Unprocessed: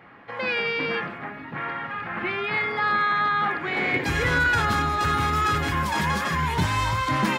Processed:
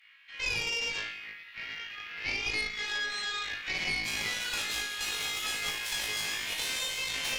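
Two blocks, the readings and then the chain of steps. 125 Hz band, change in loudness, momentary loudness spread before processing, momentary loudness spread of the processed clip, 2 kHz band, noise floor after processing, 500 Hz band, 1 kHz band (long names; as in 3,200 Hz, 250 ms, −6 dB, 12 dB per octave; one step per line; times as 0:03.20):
−23.0 dB, −8.0 dB, 10 LU, 9 LU, −8.0 dB, −49 dBFS, −16.0 dB, −20.5 dB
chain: Chebyshev high-pass filter 2,600 Hz, order 3
on a send: flutter between parallel walls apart 3.2 metres, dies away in 0.53 s
on the sum: harmonic generator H 4 −10 dB, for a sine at −15.5 dBFS
downward compressor, threshold −28 dBFS, peak gain reduction 8.5 dB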